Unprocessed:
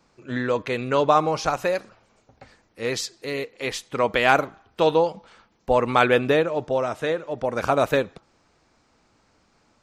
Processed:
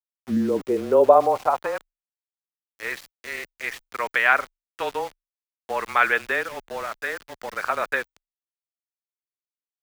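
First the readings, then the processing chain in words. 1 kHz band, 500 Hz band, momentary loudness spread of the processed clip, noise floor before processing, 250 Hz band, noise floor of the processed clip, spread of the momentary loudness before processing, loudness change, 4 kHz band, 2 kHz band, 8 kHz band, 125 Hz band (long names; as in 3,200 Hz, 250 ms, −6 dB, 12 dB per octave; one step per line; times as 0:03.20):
−0.5 dB, −2.0 dB, 16 LU, −64 dBFS, −2.0 dB, below −85 dBFS, 11 LU, −0.5 dB, −7.0 dB, +3.0 dB, −6.5 dB, −11.5 dB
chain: high-shelf EQ 2,800 Hz −6 dB
band-pass filter sweep 220 Hz → 1,800 Hz, 0:00.19–0:02.15
centre clipping without the shift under −42.5 dBFS
frequency shifter −25 Hz
level +7.5 dB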